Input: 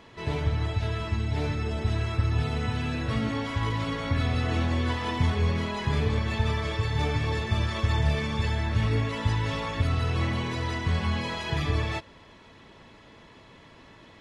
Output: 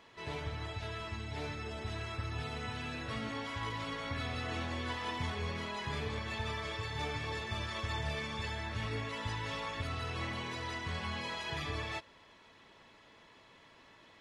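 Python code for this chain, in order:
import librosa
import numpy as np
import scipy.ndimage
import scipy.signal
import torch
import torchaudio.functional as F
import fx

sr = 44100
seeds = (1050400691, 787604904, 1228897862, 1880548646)

y = fx.low_shelf(x, sr, hz=370.0, db=-10.0)
y = y * 10.0 ** (-5.5 / 20.0)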